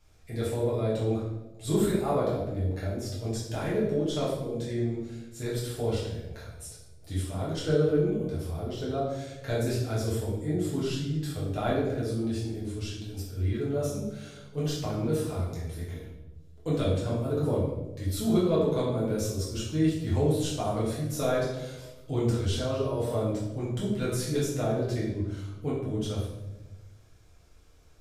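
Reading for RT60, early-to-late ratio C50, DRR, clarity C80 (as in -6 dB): 1.1 s, 2.0 dB, -8.0 dB, 5.0 dB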